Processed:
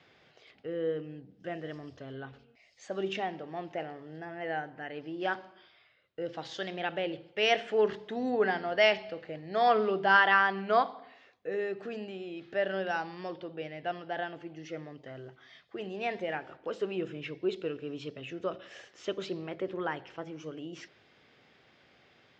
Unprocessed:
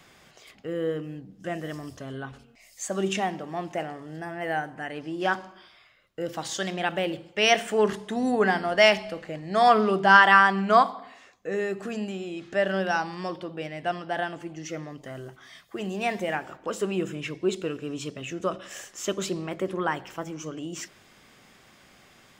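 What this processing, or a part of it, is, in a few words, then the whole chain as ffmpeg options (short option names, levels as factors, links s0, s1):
guitar cabinet: -af "highpass=79,equalizer=f=200:t=q:w=4:g=-6,equalizer=f=460:t=q:w=4:g=4,equalizer=f=1100:t=q:w=4:g=-5,lowpass=f=4600:w=0.5412,lowpass=f=4600:w=1.3066,volume=0.501"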